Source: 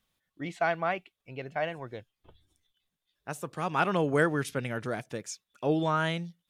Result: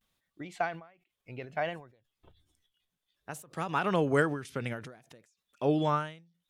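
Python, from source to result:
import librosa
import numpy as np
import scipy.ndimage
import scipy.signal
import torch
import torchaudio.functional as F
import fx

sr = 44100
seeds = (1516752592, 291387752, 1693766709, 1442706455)

y = fx.vibrato(x, sr, rate_hz=0.63, depth_cents=75.0)
y = fx.end_taper(y, sr, db_per_s=120.0)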